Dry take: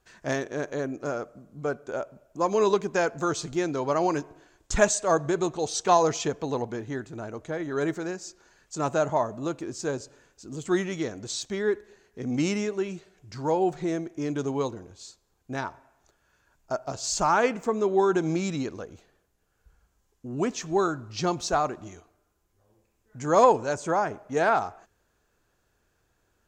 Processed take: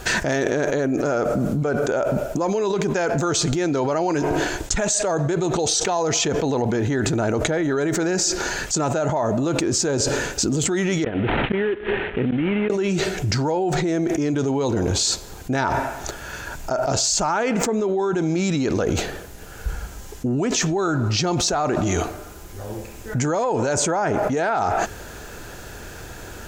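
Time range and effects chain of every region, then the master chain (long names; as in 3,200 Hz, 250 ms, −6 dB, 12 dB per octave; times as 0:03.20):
0:11.04–0:12.70: variable-slope delta modulation 16 kbit/s + gate with flip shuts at −24 dBFS, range −25 dB
whole clip: notch filter 1,100 Hz, Q 7.8; envelope flattener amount 100%; level −6 dB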